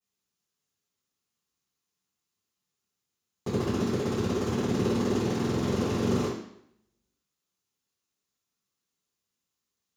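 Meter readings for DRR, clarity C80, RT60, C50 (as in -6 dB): -14.5 dB, 5.5 dB, 0.70 s, 1.0 dB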